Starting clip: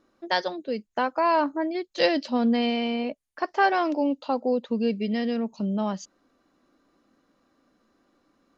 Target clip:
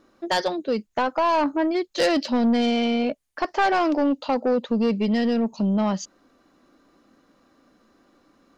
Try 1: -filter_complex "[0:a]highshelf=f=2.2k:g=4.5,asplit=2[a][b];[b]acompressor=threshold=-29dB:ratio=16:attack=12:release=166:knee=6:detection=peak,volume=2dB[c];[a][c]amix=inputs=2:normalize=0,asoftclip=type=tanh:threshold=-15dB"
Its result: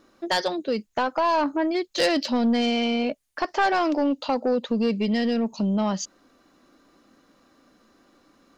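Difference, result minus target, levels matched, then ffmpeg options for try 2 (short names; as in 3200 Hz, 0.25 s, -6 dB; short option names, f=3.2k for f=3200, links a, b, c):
compressor: peak gain reduction +9 dB; 4000 Hz band +3.0 dB
-filter_complex "[0:a]asplit=2[a][b];[b]acompressor=threshold=-20dB:ratio=16:attack=12:release=166:knee=6:detection=peak,volume=2dB[c];[a][c]amix=inputs=2:normalize=0,asoftclip=type=tanh:threshold=-15dB"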